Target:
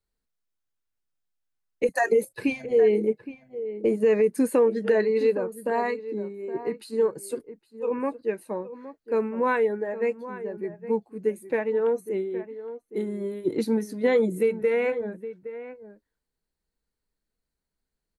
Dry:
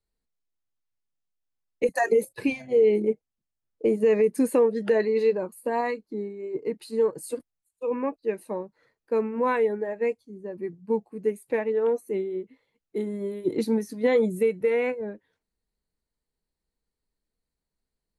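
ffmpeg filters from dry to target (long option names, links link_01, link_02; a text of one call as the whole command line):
ffmpeg -i in.wav -filter_complex "[0:a]equalizer=frequency=1500:width=3.9:gain=4.5,asplit=2[link_01][link_02];[link_02]adelay=816.3,volume=-13dB,highshelf=frequency=4000:gain=-18.4[link_03];[link_01][link_03]amix=inputs=2:normalize=0" out.wav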